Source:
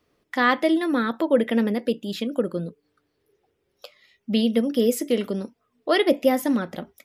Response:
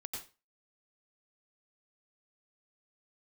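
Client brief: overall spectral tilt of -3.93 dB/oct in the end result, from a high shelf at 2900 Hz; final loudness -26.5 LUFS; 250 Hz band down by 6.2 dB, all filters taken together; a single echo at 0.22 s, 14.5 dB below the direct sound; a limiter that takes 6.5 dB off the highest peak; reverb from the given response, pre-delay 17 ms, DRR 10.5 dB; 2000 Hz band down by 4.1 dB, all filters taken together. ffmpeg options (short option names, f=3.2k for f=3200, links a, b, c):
-filter_complex "[0:a]equalizer=f=250:t=o:g=-7.5,equalizer=f=2k:t=o:g=-6,highshelf=f=2.9k:g=3.5,alimiter=limit=-15.5dB:level=0:latency=1,aecho=1:1:220:0.188,asplit=2[a][b];[1:a]atrim=start_sample=2205,adelay=17[c];[b][c]afir=irnorm=-1:irlink=0,volume=-9dB[d];[a][d]amix=inputs=2:normalize=0,volume=1dB"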